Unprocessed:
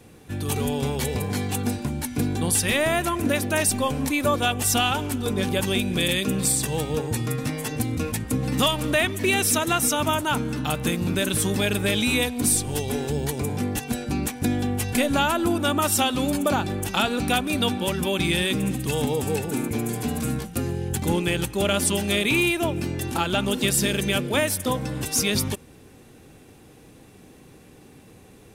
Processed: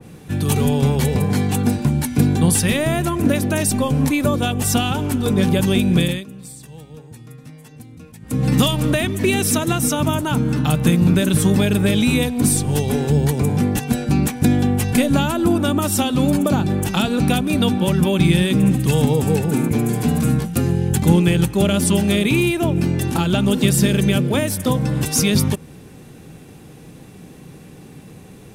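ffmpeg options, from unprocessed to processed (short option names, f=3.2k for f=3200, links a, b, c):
-filter_complex "[0:a]asplit=3[a][b][c];[a]atrim=end=6.26,asetpts=PTS-STARTPTS,afade=t=out:st=5.98:d=0.28:silence=0.0794328[d];[b]atrim=start=6.26:end=8.21,asetpts=PTS-STARTPTS,volume=-22dB[e];[c]atrim=start=8.21,asetpts=PTS-STARTPTS,afade=t=in:d=0.28:silence=0.0794328[f];[d][e][f]concat=n=3:v=0:a=1,equalizer=f=160:t=o:w=0.69:g=9,acrossover=split=480|3000[g][h][i];[h]acompressor=threshold=-29dB:ratio=6[j];[g][j][i]amix=inputs=3:normalize=0,adynamicequalizer=threshold=0.0126:dfrequency=2000:dqfactor=0.7:tfrequency=2000:tqfactor=0.7:attack=5:release=100:ratio=0.375:range=2.5:mode=cutabove:tftype=highshelf,volume=5.5dB"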